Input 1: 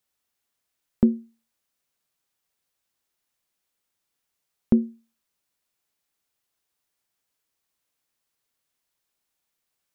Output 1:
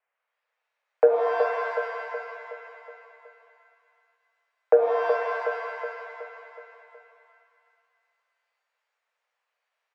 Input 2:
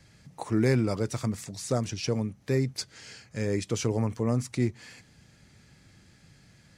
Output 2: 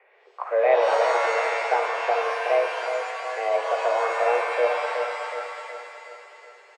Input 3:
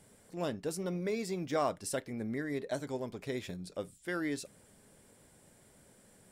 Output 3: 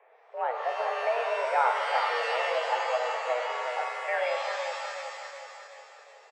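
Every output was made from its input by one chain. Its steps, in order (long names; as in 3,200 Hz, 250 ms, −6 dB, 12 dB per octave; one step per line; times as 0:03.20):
single-sideband voice off tune +240 Hz 240–2,200 Hz
on a send: repeating echo 370 ms, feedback 51%, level −7 dB
on the sum: soft clipping −12 dBFS
reverb with rising layers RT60 1.8 s, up +7 semitones, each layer −2 dB, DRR 4.5 dB
level +5.5 dB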